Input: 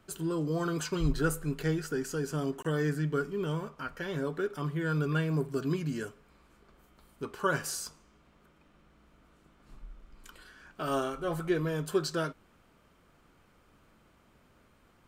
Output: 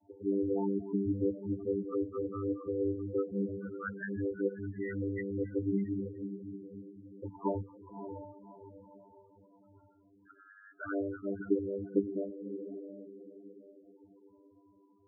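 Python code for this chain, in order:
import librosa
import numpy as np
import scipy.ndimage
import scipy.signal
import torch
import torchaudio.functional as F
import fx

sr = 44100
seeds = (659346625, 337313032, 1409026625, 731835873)

y = fx.vocoder(x, sr, bands=16, carrier='saw', carrier_hz=98.8)
y = fx.env_flanger(y, sr, rest_ms=3.3, full_db=-28.0)
y = fx.filter_lfo_lowpass(y, sr, shape='saw_up', hz=0.15, low_hz=800.0, high_hz=2700.0, q=4.6)
y = fx.echo_diffused(y, sr, ms=596, feedback_pct=43, wet_db=-9.0)
y = fx.spec_topn(y, sr, count=8)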